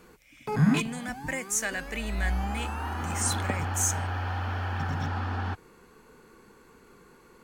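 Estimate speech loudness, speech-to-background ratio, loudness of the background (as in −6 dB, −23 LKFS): −32.0 LKFS, −1.0 dB, −31.0 LKFS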